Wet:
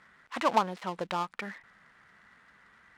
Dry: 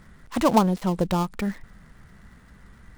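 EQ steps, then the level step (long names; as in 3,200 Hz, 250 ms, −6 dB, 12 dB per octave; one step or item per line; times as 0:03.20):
resonant band-pass 1,800 Hz, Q 0.79
0.0 dB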